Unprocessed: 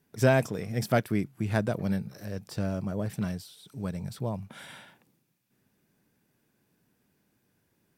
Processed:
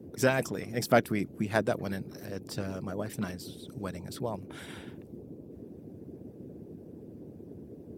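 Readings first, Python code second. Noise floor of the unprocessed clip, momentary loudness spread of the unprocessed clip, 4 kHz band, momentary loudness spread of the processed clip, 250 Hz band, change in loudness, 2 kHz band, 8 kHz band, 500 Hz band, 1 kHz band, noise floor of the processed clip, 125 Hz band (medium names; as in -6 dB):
-73 dBFS, 17 LU, +1.5 dB, 20 LU, -2.5 dB, -2.0 dB, +0.5 dB, +2.0 dB, -0.5 dB, +1.0 dB, -49 dBFS, -6.5 dB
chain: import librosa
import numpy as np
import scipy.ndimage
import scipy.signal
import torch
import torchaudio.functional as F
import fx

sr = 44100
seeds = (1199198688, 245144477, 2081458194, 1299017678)

y = fx.dmg_noise_band(x, sr, seeds[0], low_hz=81.0, high_hz=410.0, level_db=-44.0)
y = fx.hpss(y, sr, part='harmonic', gain_db=-12)
y = y * 10.0 ** (3.0 / 20.0)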